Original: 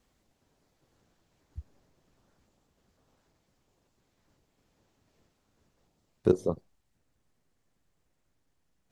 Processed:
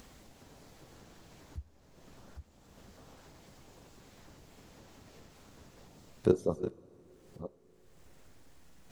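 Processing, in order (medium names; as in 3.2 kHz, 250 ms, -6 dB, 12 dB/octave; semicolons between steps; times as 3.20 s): chunks repeated in reverse 498 ms, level -10.5 dB; upward compressor, threshold -38 dBFS; two-slope reverb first 0.29 s, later 4.4 s, from -18 dB, DRR 15.5 dB; trim -2 dB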